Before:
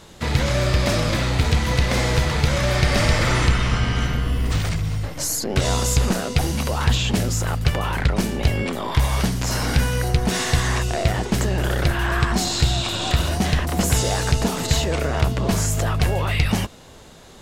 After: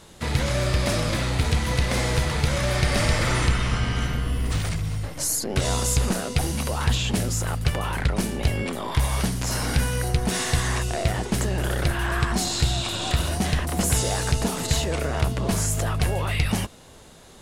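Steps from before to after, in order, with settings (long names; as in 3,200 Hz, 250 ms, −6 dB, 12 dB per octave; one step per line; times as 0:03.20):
parametric band 9,800 Hz +7.5 dB 0.44 octaves
level −3.5 dB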